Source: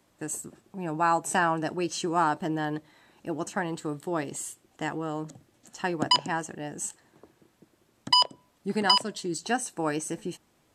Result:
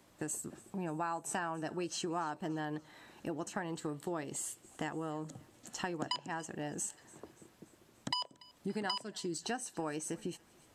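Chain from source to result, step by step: compression 4:1, threshold -39 dBFS, peak gain reduction 19 dB; thinning echo 288 ms, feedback 55%, high-pass 1.1 kHz, level -21.5 dB; trim +2 dB

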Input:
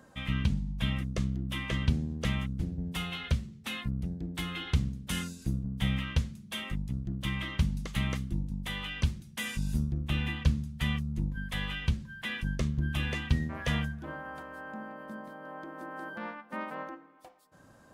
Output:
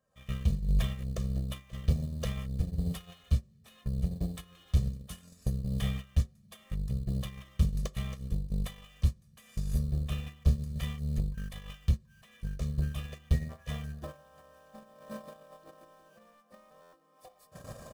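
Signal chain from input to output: recorder AGC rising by 61 dB/s; saturation -23 dBFS, distortion -13 dB; dynamic bell 1.6 kHz, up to -5 dB, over -47 dBFS, Q 1.1; in parallel at -7 dB: sample-rate reducer 4.3 kHz, jitter 20%; on the sum: treble shelf 5.4 kHz +6 dB; gate -25 dBFS, range -29 dB; comb 1.7 ms, depth 73%; on a send at -18.5 dB: reverberation RT60 0.40 s, pre-delay 3 ms; on the sum: buffer glitch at 16.81 s, samples 512, times 9

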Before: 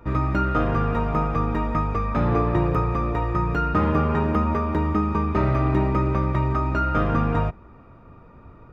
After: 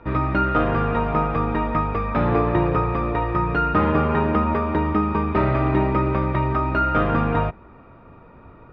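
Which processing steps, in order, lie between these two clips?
low-pass 4 kHz 24 dB/octave; bass shelf 220 Hz -6.5 dB; band-stop 1.2 kHz, Q 22; trim +4.5 dB

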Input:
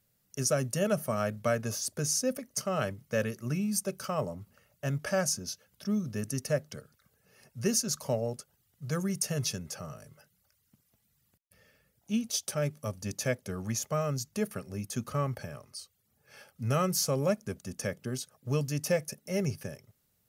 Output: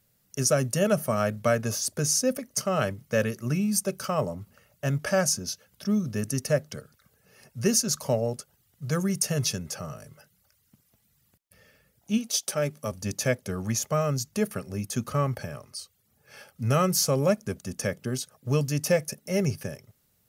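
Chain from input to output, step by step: 12.17–12.91 s: high-pass 300 Hz -> 130 Hz 12 dB/octave; trim +5 dB

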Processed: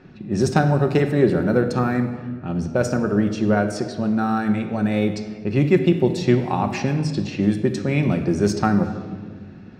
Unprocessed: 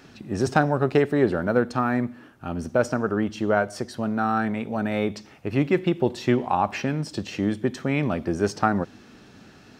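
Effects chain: level-controlled noise filter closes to 1.9 kHz, open at -20 dBFS; peaking EQ 1.1 kHz -8 dB 2.5 oct; band-stop 3.1 kHz, Q 16; reverberation RT60 1.6 s, pre-delay 5 ms, DRR 5.5 dB; trim +5.5 dB

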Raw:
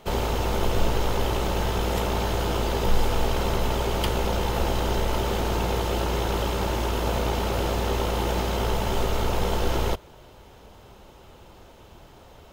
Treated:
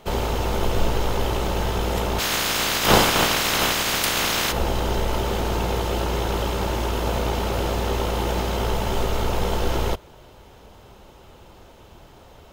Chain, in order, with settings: 2.18–4.51 s: spectral peaks clipped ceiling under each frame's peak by 29 dB; trim +1.5 dB

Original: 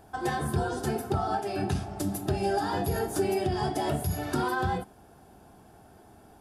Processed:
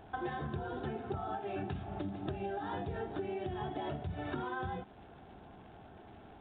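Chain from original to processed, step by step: compression 10:1, threshold -35 dBFS, peak gain reduction 13.5 dB; crackle 270 per s -48 dBFS; resampled via 8 kHz

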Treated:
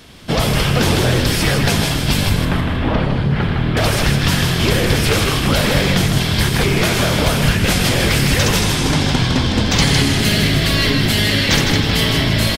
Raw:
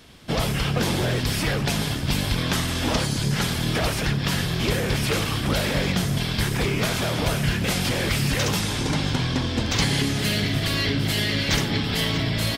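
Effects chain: 2.29–3.77 s: distance through air 480 m; frequency-shifting echo 157 ms, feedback 35%, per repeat -52 Hz, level -5 dB; trim +7 dB

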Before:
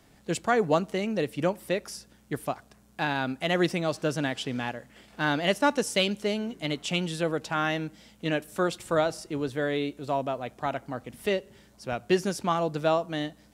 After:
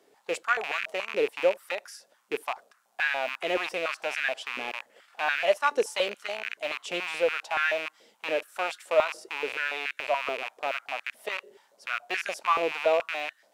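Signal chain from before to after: rattle on loud lows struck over -43 dBFS, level -17 dBFS; step-sequenced high-pass 7 Hz 420–1600 Hz; trim -6 dB

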